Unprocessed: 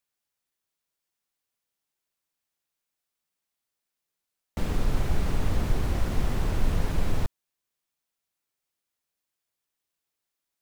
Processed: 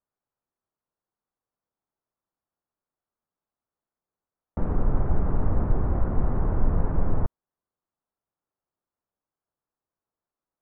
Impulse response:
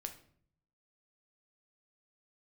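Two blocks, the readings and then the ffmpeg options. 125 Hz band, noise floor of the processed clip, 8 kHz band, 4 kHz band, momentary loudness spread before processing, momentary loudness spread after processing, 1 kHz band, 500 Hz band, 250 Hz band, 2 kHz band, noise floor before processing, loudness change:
+2.5 dB, under -85 dBFS, under -30 dB, under -30 dB, 5 LU, 5 LU, +2.0 dB, +2.5 dB, +2.5 dB, -7.5 dB, -85 dBFS, +2.0 dB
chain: -af "lowpass=f=1300:w=0.5412,lowpass=f=1300:w=1.3066,volume=1.33"

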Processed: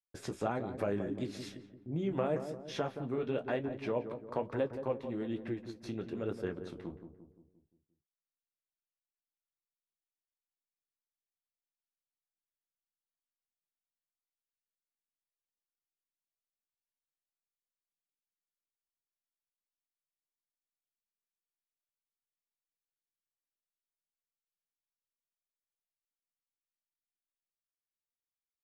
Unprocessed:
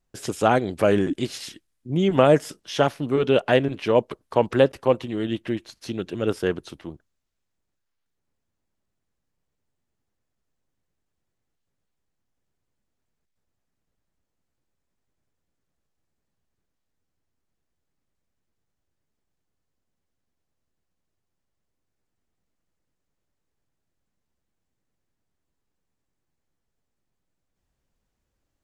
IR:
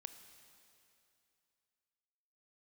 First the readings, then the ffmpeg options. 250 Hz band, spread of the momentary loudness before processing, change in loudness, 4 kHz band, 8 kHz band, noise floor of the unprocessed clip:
-12.5 dB, 15 LU, -15.0 dB, -18.0 dB, under -15 dB, -79 dBFS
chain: -filter_complex "[0:a]agate=range=0.0224:threshold=0.00631:ratio=3:detection=peak,highshelf=f=3800:g=-11,bandreject=f=3000:w=8.7,acompressor=threshold=0.0224:ratio=2,flanger=delay=9.5:depth=9.3:regen=-46:speed=1.1:shape=triangular,asplit=2[s0][s1];[s1]adelay=174,lowpass=f=900:p=1,volume=0.398,asplit=2[s2][s3];[s3]adelay=174,lowpass=f=900:p=1,volume=0.53,asplit=2[s4][s5];[s5]adelay=174,lowpass=f=900:p=1,volume=0.53,asplit=2[s6][s7];[s7]adelay=174,lowpass=f=900:p=1,volume=0.53,asplit=2[s8][s9];[s9]adelay=174,lowpass=f=900:p=1,volume=0.53,asplit=2[s10][s11];[s11]adelay=174,lowpass=f=900:p=1,volume=0.53[s12];[s0][s2][s4][s6][s8][s10][s12]amix=inputs=7:normalize=0,volume=0.841"

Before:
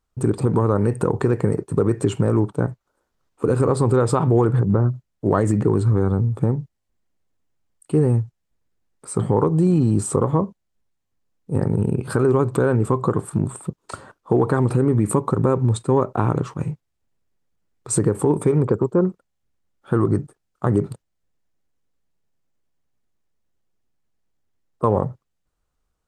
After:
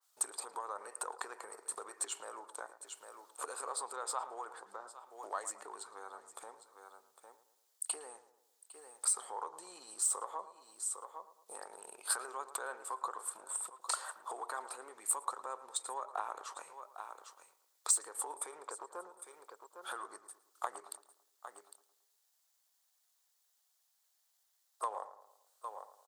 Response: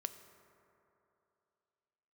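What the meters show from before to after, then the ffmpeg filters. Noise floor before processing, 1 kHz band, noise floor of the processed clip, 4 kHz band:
-75 dBFS, -13.0 dB, -77 dBFS, no reading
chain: -filter_complex "[0:a]asplit=2[s0][s1];[s1]aecho=0:1:805:0.0841[s2];[s0][s2]amix=inputs=2:normalize=0,aexciter=amount=2.3:drive=8.1:freq=3500,acompressor=threshold=0.0316:ratio=6,highpass=f=730:w=0.5412,highpass=f=730:w=1.3066,asplit=2[s3][s4];[s4]adelay=111,lowpass=f=2000:p=1,volume=0.224,asplit=2[s5][s6];[s6]adelay=111,lowpass=f=2000:p=1,volume=0.49,asplit=2[s7][s8];[s8]adelay=111,lowpass=f=2000:p=1,volume=0.49,asplit=2[s9][s10];[s10]adelay=111,lowpass=f=2000:p=1,volume=0.49,asplit=2[s11][s12];[s12]adelay=111,lowpass=f=2000:p=1,volume=0.49[s13];[s5][s7][s9][s11][s13]amix=inputs=5:normalize=0[s14];[s3][s14]amix=inputs=2:normalize=0,adynamicequalizer=threshold=0.00158:dfrequency=2400:dqfactor=0.7:tfrequency=2400:tqfactor=0.7:attack=5:release=100:ratio=0.375:range=3.5:mode=cutabove:tftype=highshelf,volume=1.19"

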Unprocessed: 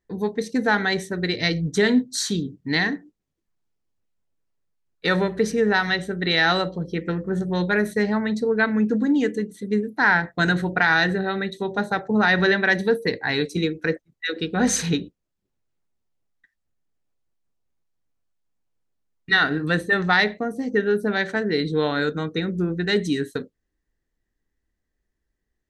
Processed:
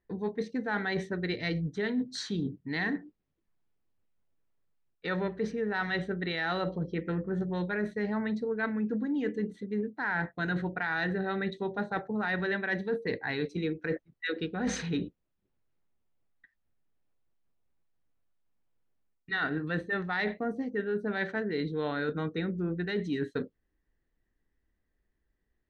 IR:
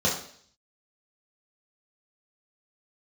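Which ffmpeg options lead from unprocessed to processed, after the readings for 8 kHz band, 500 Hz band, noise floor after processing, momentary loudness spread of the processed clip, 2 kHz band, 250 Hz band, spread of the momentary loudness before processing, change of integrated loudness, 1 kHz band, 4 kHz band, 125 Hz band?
-17.0 dB, -9.5 dB, -80 dBFS, 4 LU, -11.5 dB, -9.0 dB, 8 LU, -10.5 dB, -11.0 dB, -14.5 dB, -8.0 dB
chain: -af "lowpass=3100,areverse,acompressor=threshold=0.0355:ratio=6,areverse"

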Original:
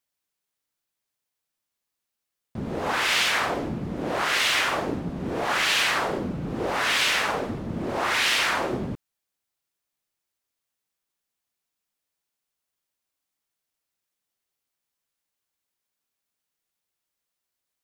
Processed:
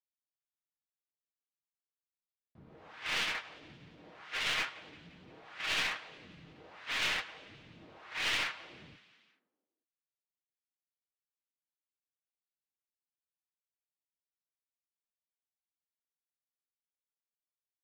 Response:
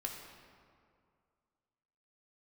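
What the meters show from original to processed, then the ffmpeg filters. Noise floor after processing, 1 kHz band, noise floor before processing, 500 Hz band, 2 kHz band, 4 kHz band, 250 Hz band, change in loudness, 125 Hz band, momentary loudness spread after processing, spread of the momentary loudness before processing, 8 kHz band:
under -85 dBFS, -17.5 dB, -84 dBFS, -21.5 dB, -12.0 dB, -11.0 dB, -23.5 dB, -10.0 dB, -21.5 dB, 21 LU, 11 LU, -15.0 dB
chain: -filter_complex "[0:a]lowpass=3700,lowshelf=f=440:g=-6,acrossover=split=1700[s0][s1];[s0]alimiter=level_in=1.26:limit=0.0631:level=0:latency=1:release=100,volume=0.794[s2];[s2][s1]amix=inputs=2:normalize=0,flanger=delay=7.2:depth=6.3:regen=-50:speed=1.3:shape=sinusoidal,aecho=1:1:6.4:0.33,agate=range=0.112:threshold=0.0398:ratio=16:detection=peak,equalizer=f=79:t=o:w=1.5:g=6.5,asplit=6[s3][s4][s5][s6][s7][s8];[s4]adelay=175,afreqshift=35,volume=0.0794[s9];[s5]adelay=350,afreqshift=70,volume=0.0479[s10];[s6]adelay=525,afreqshift=105,volume=0.0285[s11];[s7]adelay=700,afreqshift=140,volume=0.0172[s12];[s8]adelay=875,afreqshift=175,volume=0.0104[s13];[s3][s9][s10][s11][s12][s13]amix=inputs=6:normalize=0,aeval=exprs='clip(val(0),-1,0.0224)':c=same"

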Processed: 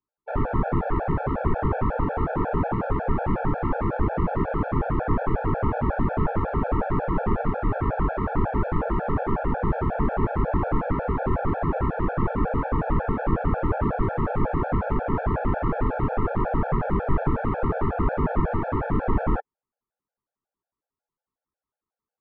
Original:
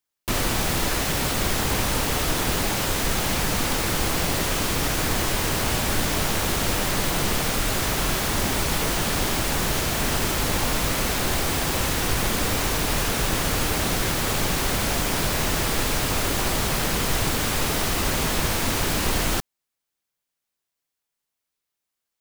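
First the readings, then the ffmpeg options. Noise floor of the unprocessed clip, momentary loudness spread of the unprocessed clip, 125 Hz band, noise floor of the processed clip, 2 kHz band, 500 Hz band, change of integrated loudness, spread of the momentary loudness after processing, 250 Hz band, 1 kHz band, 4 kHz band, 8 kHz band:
-84 dBFS, 0 LU, +1.5 dB, under -85 dBFS, -9.0 dB, +1.5 dB, -3.0 dB, 1 LU, +1.5 dB, +0.5 dB, under -30 dB, under -40 dB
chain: -af "lowpass=f=1300:w=0.5412,lowpass=f=1300:w=1.3066,afftfilt=real='re*gt(sin(2*PI*5.5*pts/sr)*(1-2*mod(floor(b*sr/1024/450),2)),0)':imag='im*gt(sin(2*PI*5.5*pts/sr)*(1-2*mod(floor(b*sr/1024/450),2)),0)':win_size=1024:overlap=0.75,volume=1.78"

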